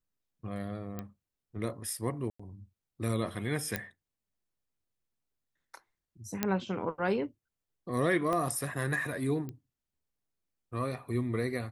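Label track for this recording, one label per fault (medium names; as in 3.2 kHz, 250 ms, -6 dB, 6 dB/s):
0.990000	0.990000	pop -24 dBFS
2.300000	2.400000	dropout 95 ms
3.760000	3.760000	pop -15 dBFS
6.430000	6.430000	pop -12 dBFS
8.330000	8.330000	pop -20 dBFS
9.490000	9.490000	pop -28 dBFS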